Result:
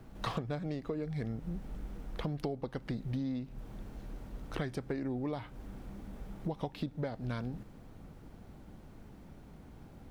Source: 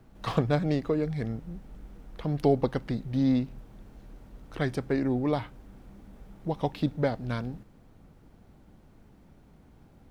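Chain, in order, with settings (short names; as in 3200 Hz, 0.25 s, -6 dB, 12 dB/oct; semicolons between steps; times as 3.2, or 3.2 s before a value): compressor 16:1, threshold -36 dBFS, peak gain reduction 19.5 dB; gain +3.5 dB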